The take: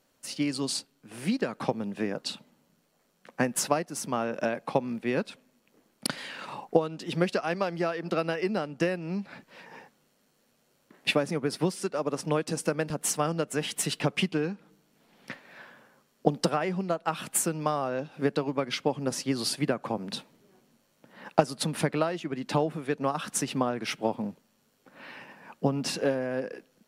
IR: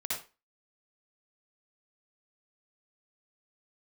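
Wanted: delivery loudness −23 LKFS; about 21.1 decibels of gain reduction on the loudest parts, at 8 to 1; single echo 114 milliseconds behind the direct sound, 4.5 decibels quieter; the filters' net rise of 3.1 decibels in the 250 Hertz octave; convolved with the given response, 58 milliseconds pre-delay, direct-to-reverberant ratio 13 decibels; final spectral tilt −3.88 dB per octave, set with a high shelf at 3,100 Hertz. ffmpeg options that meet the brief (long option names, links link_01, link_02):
-filter_complex "[0:a]equalizer=frequency=250:width_type=o:gain=4,highshelf=frequency=3100:gain=3,acompressor=threshold=-38dB:ratio=8,aecho=1:1:114:0.596,asplit=2[link_01][link_02];[1:a]atrim=start_sample=2205,adelay=58[link_03];[link_02][link_03]afir=irnorm=-1:irlink=0,volume=-17dB[link_04];[link_01][link_04]amix=inputs=2:normalize=0,volume=18dB"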